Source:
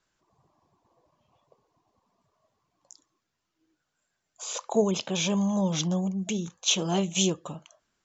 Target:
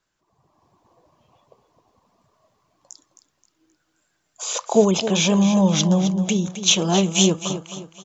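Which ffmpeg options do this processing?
-af "aecho=1:1:264|528|792|1056:0.282|0.107|0.0407|0.0155,dynaudnorm=f=220:g=5:m=8.5dB"

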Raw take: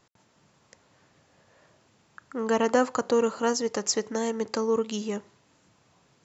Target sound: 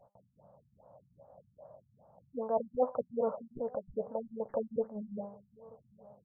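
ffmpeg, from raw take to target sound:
-filter_complex "[0:a]firequalizer=gain_entry='entry(180,0);entry(350,-15);entry(560,14);entry(1900,-28);entry(4400,-3);entry(7000,-6)':delay=0.05:min_phase=1,aexciter=amount=10.8:drive=9:freq=3.6k,bandreject=f=201.2:t=h:w=4,bandreject=f=402.4:t=h:w=4,bandreject=f=603.6:t=h:w=4,bandreject=f=804.8:t=h:w=4,bandreject=f=1.006k:t=h:w=4,bandreject=f=1.2072k:t=h:w=4,bandreject=f=1.4084k:t=h:w=4,bandreject=f=1.6096k:t=h:w=4,bandreject=f=1.8108k:t=h:w=4,bandreject=f=2.012k:t=h:w=4,bandreject=f=2.2132k:t=h:w=4,bandreject=f=2.4144k:t=h:w=4,bandreject=f=2.6156k:t=h:w=4,bandreject=f=2.8168k:t=h:w=4,bandreject=f=3.018k:t=h:w=4,bandreject=f=3.2192k:t=h:w=4,bandreject=f=3.4204k:t=h:w=4,bandreject=f=3.6216k:t=h:w=4,bandreject=f=3.8228k:t=h:w=4,bandreject=f=4.024k:t=h:w=4,bandreject=f=4.2252k:t=h:w=4,bandreject=f=4.4264k:t=h:w=4,bandreject=f=4.6276k:t=h:w=4,bandreject=f=4.8288k:t=h:w=4,bandreject=f=5.03k:t=h:w=4,bandreject=f=5.2312k:t=h:w=4,bandreject=f=5.4324k:t=h:w=4,bandreject=f=5.6336k:t=h:w=4,aeval=exprs='(mod(1.41*val(0)+1,2)-1)/1.41':c=same,asplit=2[a][b];[b]adelay=16,volume=-12dB[c];[a][c]amix=inputs=2:normalize=0,areverse,acompressor=threshold=-24dB:ratio=10,areverse,asplit=2[d][e];[e]adelay=932.9,volume=-24dB,highshelf=f=4k:g=-21[f];[d][f]amix=inputs=2:normalize=0,afftfilt=real='re*lt(b*sr/1024,200*pow(2200/200,0.5+0.5*sin(2*PI*2.5*pts/sr)))':imag='im*lt(b*sr/1024,200*pow(2200/200,0.5+0.5*sin(2*PI*2.5*pts/sr)))':win_size=1024:overlap=0.75"

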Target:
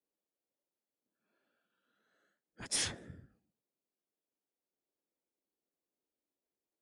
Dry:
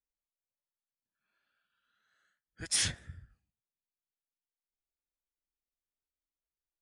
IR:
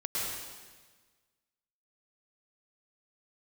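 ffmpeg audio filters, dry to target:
-filter_complex "[0:a]highpass=f=120:p=1,acrossover=split=200|590|2800[a][b][c][d];[b]aeval=exprs='0.00944*sin(PI/2*6.31*val(0)/0.00944)':c=same[e];[a][e][c][d]amix=inputs=4:normalize=0,volume=-4.5dB"

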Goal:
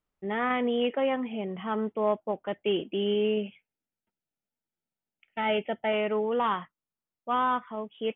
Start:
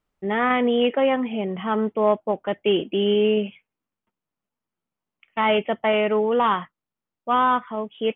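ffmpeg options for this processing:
-filter_complex "[0:a]asettb=1/sr,asplit=3[a][b][c];[a]atrim=end=3.414[d];[b]atrim=start=3.41:end=5.92,asetpts=PTS-STARTPTS,afade=t=in:d=0.004:c=qsin,afade=t=out:st=2.506:d=0.004:c=qsin,asuperstop=centerf=1100:order=4:qfactor=3.5[e];[c]atrim=start=5.916[f];[d][e]acrossfade=d=0.004:c1=hsin:c2=qsin[g];[g][f]acrossfade=d=0.004:c1=qsin:c2=hsin,volume=-7dB"

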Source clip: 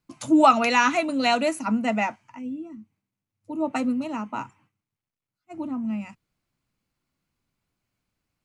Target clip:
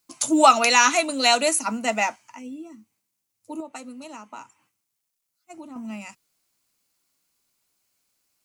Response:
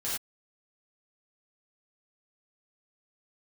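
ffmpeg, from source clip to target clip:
-filter_complex "[0:a]bass=f=250:g=-14,treble=f=4k:g=14,asettb=1/sr,asplit=3[a][b][c];[a]atrim=end=3.604[d];[b]atrim=start=3.6:end=5.76,asetpts=PTS-STARTPTS,afade=t=in:d=0.004:c=qsin,afade=t=out:st=2.156:d=0.004:c=qsin,acompressor=threshold=-43dB:ratio=2.5[e];[c]atrim=start=5.756[f];[d][e]acrossfade=d=0.004:c1=hsin:c2=qsin[g];[g][f]acrossfade=d=0.004:c1=qsin:c2=hsin,volume=2dB"

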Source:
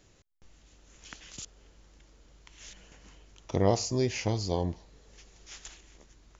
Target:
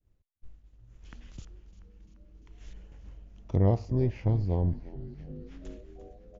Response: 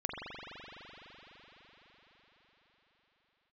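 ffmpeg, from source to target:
-filter_complex "[0:a]agate=range=-33dB:threshold=-51dB:ratio=3:detection=peak,aemphasis=mode=reproduction:type=riaa,asettb=1/sr,asplit=3[a][b][c];[a]atrim=end=3.574[d];[b]atrim=start=3.57:end=5.65,asetpts=PTS-STARTPTS,afade=t=in:d=0.004:c=qsin,afade=t=out:st=2.076:d=0.004:c=qsin,adynamicsmooth=sensitivity=2:basefreq=4.4k[e];[c]atrim=start=5.646[f];[d][e]acrossfade=d=0.004:c1=hsin:c2=qsin[g];[g][f]acrossfade=d=0.004:c1=qsin:c2=hsin,asplit=8[h][i][j][k][l][m][n][o];[i]adelay=345,afreqshift=-120,volume=-15.5dB[p];[j]adelay=690,afreqshift=-240,volume=-19.2dB[q];[k]adelay=1035,afreqshift=-360,volume=-23dB[r];[l]adelay=1380,afreqshift=-480,volume=-26.7dB[s];[m]adelay=1725,afreqshift=-600,volume=-30.5dB[t];[n]adelay=2070,afreqshift=-720,volume=-34.2dB[u];[o]adelay=2415,afreqshift=-840,volume=-38dB[v];[h][p][q][r][s][t][u][v]amix=inputs=8:normalize=0,adynamicequalizer=threshold=0.00224:dfrequency=2500:dqfactor=0.7:tfrequency=2500:tqfactor=0.7:attack=5:release=100:ratio=0.375:range=2.5:mode=cutabove:tftype=highshelf,volume=-6.5dB"

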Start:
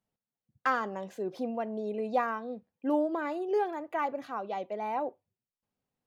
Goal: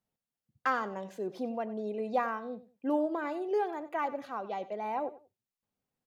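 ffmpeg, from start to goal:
-af "aecho=1:1:93|186:0.15|0.0344,volume=-1.5dB"

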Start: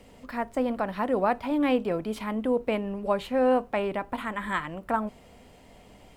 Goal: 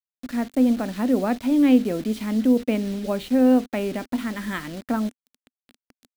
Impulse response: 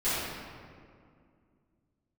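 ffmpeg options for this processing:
-af "acrusher=bits=6:mix=0:aa=0.000001,equalizer=f=250:t=o:w=0.67:g=12,equalizer=f=1k:t=o:w=0.67:g=-8,equalizer=f=4k:t=o:w=0.67:g=4"

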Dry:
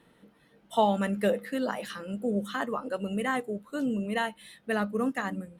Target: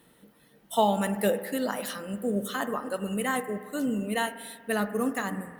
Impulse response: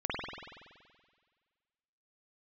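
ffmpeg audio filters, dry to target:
-filter_complex "[0:a]aemphasis=mode=production:type=50fm,asplit=2[a][b];[b]lowpass=f=2.4k:w=0.5412,lowpass=f=2.4k:w=1.3066[c];[1:a]atrim=start_sample=2205[d];[c][d]afir=irnorm=-1:irlink=0,volume=-17dB[e];[a][e]amix=inputs=2:normalize=0"

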